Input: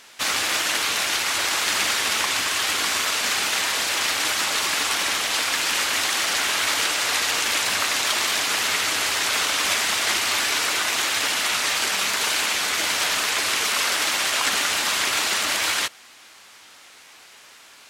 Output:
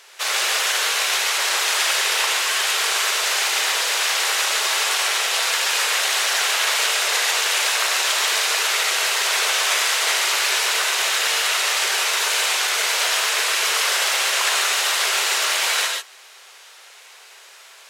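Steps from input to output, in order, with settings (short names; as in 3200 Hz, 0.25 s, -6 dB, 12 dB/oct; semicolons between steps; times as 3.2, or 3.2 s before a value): brick-wall FIR high-pass 360 Hz; reverb, pre-delay 3 ms, DRR 1.5 dB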